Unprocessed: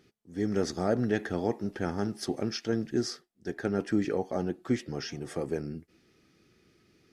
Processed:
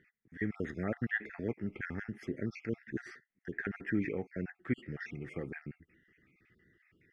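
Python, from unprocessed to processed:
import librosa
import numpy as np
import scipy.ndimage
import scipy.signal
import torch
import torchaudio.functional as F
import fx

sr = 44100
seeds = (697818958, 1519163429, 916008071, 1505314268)

y = fx.spec_dropout(x, sr, seeds[0], share_pct=39)
y = fx.curve_eq(y, sr, hz=(130.0, 420.0, 670.0, 1000.0, 2000.0, 4200.0), db=(0, -5, -10, -12, 12, -20))
y = y * 10.0 ** (-2.0 / 20.0)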